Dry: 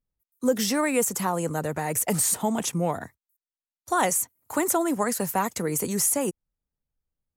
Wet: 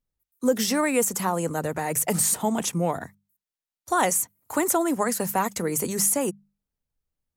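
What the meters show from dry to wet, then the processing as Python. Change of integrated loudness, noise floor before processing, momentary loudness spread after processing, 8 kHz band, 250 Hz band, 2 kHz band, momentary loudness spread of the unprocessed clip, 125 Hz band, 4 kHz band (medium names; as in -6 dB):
+1.0 dB, under -85 dBFS, 7 LU, +1.0 dB, +0.5 dB, +1.0 dB, 6 LU, 0.0 dB, +1.0 dB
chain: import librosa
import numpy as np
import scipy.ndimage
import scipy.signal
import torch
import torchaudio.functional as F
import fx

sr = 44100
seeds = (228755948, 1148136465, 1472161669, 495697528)

y = fx.hum_notches(x, sr, base_hz=50, count=4)
y = y * 10.0 ** (1.0 / 20.0)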